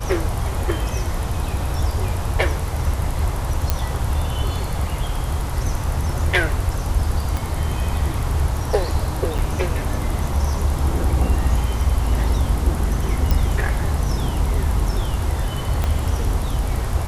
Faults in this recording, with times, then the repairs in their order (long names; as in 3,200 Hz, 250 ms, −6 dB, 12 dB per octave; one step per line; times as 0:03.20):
0:03.70: click
0:07.37: click
0:09.38–0:09.39: drop-out 7 ms
0:13.31: click
0:15.84: click −8 dBFS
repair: click removal
repair the gap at 0:09.38, 7 ms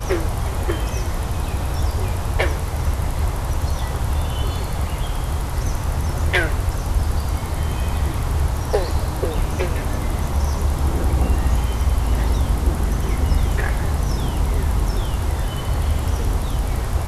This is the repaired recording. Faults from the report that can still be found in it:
0:07.37: click
0:15.84: click